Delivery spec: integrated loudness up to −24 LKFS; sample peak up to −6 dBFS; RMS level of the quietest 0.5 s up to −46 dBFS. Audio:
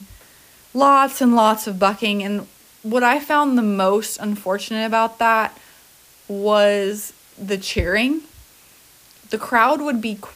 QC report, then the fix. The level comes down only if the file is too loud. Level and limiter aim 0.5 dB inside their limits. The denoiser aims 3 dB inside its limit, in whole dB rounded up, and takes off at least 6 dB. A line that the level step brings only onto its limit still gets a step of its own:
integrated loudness −18.5 LKFS: out of spec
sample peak −3.5 dBFS: out of spec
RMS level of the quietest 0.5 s −50 dBFS: in spec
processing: level −6 dB

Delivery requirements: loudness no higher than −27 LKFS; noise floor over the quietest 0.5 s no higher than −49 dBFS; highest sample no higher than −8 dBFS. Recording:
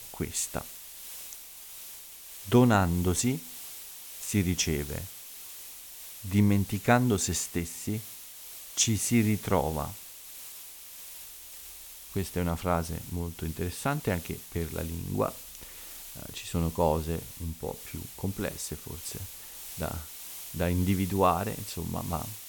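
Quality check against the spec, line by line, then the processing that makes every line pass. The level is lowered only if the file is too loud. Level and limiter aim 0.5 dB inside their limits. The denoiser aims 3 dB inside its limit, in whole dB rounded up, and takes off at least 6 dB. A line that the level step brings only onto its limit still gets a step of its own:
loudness −30.0 LKFS: in spec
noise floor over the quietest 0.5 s −46 dBFS: out of spec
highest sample −8.5 dBFS: in spec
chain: broadband denoise 6 dB, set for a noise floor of −46 dBFS

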